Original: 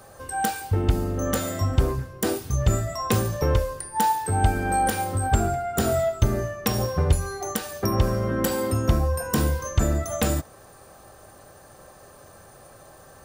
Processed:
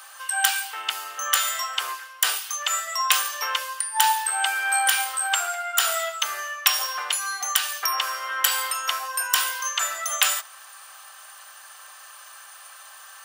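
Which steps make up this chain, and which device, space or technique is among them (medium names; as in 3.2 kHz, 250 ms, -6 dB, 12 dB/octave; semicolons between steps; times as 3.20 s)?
headphones lying on a table (high-pass 1.1 kHz 24 dB/octave; peaking EQ 3 kHz +8 dB 0.37 oct); trim +8.5 dB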